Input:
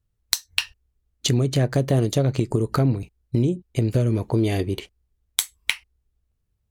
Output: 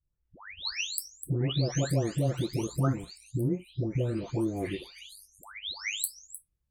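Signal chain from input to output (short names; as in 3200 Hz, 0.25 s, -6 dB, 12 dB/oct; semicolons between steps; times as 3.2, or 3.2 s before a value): spectral delay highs late, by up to 0.653 s; gain -6 dB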